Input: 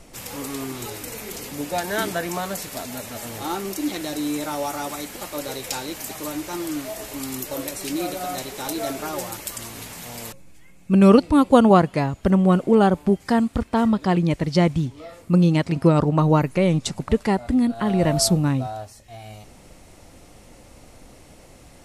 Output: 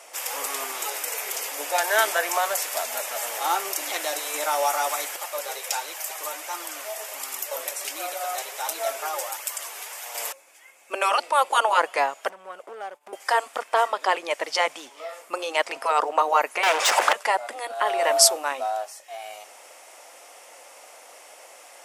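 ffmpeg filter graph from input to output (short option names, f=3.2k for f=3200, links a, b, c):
-filter_complex "[0:a]asettb=1/sr,asplit=3[a][b][c];[a]atrim=end=5.164[d];[b]atrim=start=5.16:end=10.15,asetpts=PTS-STARTPTS,afade=t=in:d=0.004:c=qsin,afade=t=out:st=4.986:d=0.004:c=qsin,highpass=290,flanger=delay=0.6:depth=2.1:regen=65:speed=1.4:shape=triangular[e];[c]atrim=start=10.146[f];[d][e]acrossfade=d=0.004:c1=hsin:c2=qsin[g];[g][f]acrossfade=d=0.004:c1=qsin:c2=hsin,asettb=1/sr,asplit=3[h][i][j];[h]atrim=end=12.294[k];[i]atrim=start=12.29:end=13.13,asetpts=PTS-STARTPTS,afade=t=in:d=0.004:c=qsin,afade=t=out:st=0.836:d=0.004:c=qsin,acompressor=threshold=-29dB:ratio=12:attack=3.2:release=140:knee=1:detection=peak,asoftclip=type=hard:threshold=-29dB,agate=range=-33dB:threshold=-36dB:ratio=3:release=100:detection=peak[l];[j]atrim=start=13.126[m];[k][l]acrossfade=d=0.004:c1=hsin:c2=qsin[n];[n][m]acrossfade=d=0.004:c1=qsin:c2=hsin,asettb=1/sr,asplit=3[o][p][q];[o]atrim=end=16.634[r];[p]atrim=start=16.63:end=17.13,asetpts=PTS-STARTPTS,afade=t=in:d=0.004:c=qsin,afade=t=out:st=0.496:d=0.004:c=qsin,aeval=exprs='clip(val(0),-1,0.0596)':c=same,asplit=2[s][t];[t]highpass=f=720:p=1,volume=36dB,asoftclip=type=tanh:threshold=-10.5dB[u];[s][u]amix=inputs=2:normalize=0,lowpass=f=2.4k:p=1,volume=-6dB[v];[q]atrim=start=17.126[w];[r][v]acrossfade=d=0.004:c1=hsin:c2=qsin[x];[x][w]acrossfade=d=0.004:c1=qsin:c2=hsin,afftfilt=real='re*lt(hypot(re,im),0.708)':imag='im*lt(hypot(re,im),0.708)':win_size=1024:overlap=0.75,highpass=f=580:w=0.5412,highpass=f=580:w=1.3066,equalizer=f=4.1k:t=o:w=0.27:g=-7.5,volume=6dB"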